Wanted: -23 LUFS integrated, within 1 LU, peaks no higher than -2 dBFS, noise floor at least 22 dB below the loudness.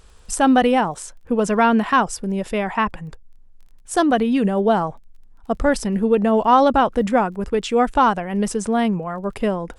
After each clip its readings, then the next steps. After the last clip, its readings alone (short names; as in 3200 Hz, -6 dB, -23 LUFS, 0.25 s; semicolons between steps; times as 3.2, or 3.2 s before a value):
ticks 20/s; loudness -19.0 LUFS; peak -3.0 dBFS; loudness target -23.0 LUFS
-> de-click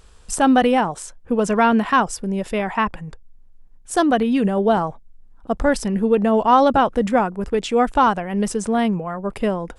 ticks 0/s; loudness -19.0 LUFS; peak -3.0 dBFS; loudness target -23.0 LUFS
-> gain -4 dB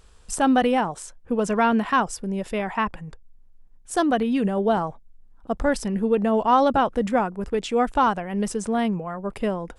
loudness -23.0 LUFS; peak -7.0 dBFS; noise floor -50 dBFS